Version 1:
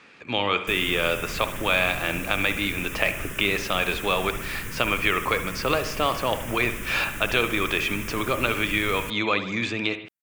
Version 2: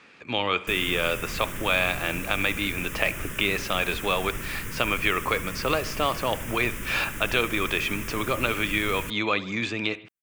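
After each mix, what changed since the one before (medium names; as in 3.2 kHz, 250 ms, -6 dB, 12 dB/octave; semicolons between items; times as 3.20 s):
speech: send -7.5 dB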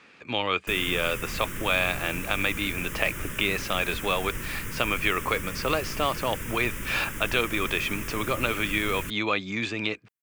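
reverb: off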